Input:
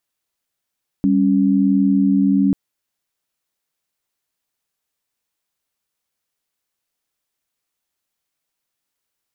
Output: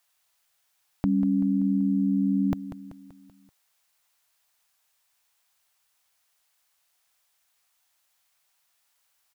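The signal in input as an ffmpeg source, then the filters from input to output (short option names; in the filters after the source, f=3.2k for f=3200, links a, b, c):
-f lavfi -i "aevalsrc='0.178*(sin(2*PI*196*t)+sin(2*PI*277.18*t))':d=1.49:s=44100"
-af "firequalizer=gain_entry='entry(110,0);entry(240,-10);entry(720,8)':delay=0.05:min_phase=1,aecho=1:1:192|384|576|768|960:0.251|0.128|0.0653|0.0333|0.017"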